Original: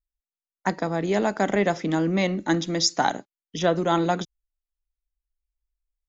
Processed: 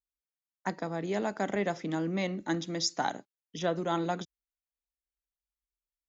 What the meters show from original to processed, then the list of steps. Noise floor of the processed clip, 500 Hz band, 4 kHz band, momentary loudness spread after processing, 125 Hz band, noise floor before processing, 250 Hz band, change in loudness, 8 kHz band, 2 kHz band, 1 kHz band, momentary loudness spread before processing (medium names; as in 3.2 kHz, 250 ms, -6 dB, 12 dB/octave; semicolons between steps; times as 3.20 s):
under -85 dBFS, -8.5 dB, -8.5 dB, 8 LU, -8.5 dB, under -85 dBFS, -8.5 dB, -8.5 dB, no reading, -8.5 dB, -8.5 dB, 8 LU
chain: high-pass 55 Hz; trim -8.5 dB